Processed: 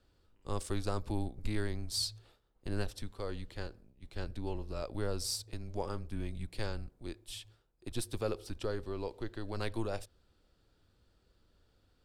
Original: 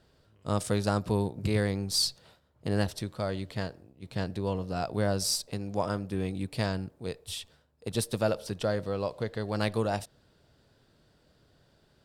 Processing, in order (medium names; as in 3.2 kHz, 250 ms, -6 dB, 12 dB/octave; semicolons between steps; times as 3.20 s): bass shelf 89 Hz +9 dB; frequency shift -110 Hz; trim -7.5 dB